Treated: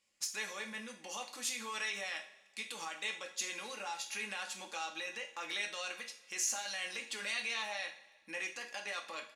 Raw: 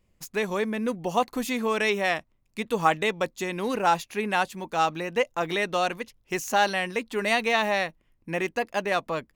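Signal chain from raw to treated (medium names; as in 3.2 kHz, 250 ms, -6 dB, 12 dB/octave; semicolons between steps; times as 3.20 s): comb 3.6 ms, depth 44%; compression, threshold -26 dBFS, peak gain reduction 11.5 dB; peak limiter -26 dBFS, peak gain reduction 11 dB; frequency weighting ITU-R 468; two-slope reverb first 0.42 s, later 1.6 s, from -17 dB, DRR 1.5 dB; trim -9 dB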